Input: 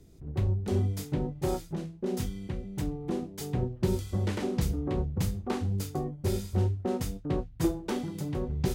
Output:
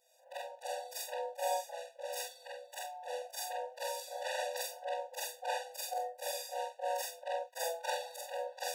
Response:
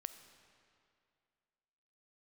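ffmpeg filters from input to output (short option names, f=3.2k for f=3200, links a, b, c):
-af "afftfilt=real='re':imag='-im':win_size=4096:overlap=0.75,dynaudnorm=f=110:g=3:m=6.5dB,afftfilt=real='re*eq(mod(floor(b*sr/1024/490),2),1)':imag='im*eq(mod(floor(b*sr/1024/490),2),1)':win_size=1024:overlap=0.75,volume=3dB"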